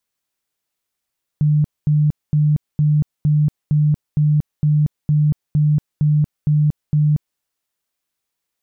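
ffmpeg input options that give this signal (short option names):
-f lavfi -i "aevalsrc='0.266*sin(2*PI*150*mod(t,0.46))*lt(mod(t,0.46),35/150)':d=5.98:s=44100"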